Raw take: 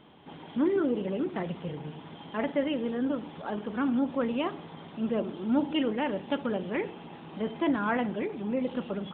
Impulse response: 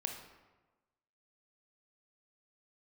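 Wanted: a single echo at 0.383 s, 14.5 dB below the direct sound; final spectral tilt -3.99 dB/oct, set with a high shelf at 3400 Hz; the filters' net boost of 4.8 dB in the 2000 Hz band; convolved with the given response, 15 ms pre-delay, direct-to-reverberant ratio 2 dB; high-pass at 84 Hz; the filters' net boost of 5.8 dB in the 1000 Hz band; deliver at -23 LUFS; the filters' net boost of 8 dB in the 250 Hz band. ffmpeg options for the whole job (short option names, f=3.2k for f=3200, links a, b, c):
-filter_complex "[0:a]highpass=84,equalizer=f=250:t=o:g=9,equalizer=f=1k:t=o:g=6,equalizer=f=2k:t=o:g=6,highshelf=f=3.4k:g=-8,aecho=1:1:383:0.188,asplit=2[a][b];[1:a]atrim=start_sample=2205,adelay=15[c];[b][c]afir=irnorm=-1:irlink=0,volume=-2.5dB[d];[a][d]amix=inputs=2:normalize=0,volume=-1.5dB"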